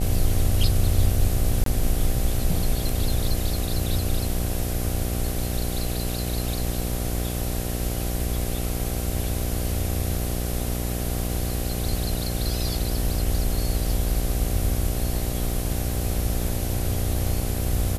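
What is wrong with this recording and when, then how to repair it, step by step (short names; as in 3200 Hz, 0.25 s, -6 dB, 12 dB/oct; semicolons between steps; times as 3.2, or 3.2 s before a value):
buzz 60 Hz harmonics 13 -28 dBFS
1.64–1.66 gap 23 ms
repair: de-hum 60 Hz, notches 13; interpolate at 1.64, 23 ms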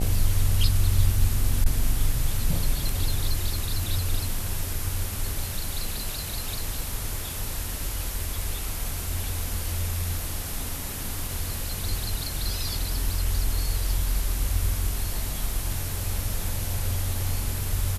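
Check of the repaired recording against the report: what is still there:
none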